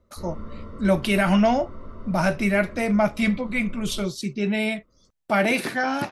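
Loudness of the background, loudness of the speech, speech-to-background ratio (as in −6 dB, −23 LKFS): −42.0 LKFS, −23.5 LKFS, 18.5 dB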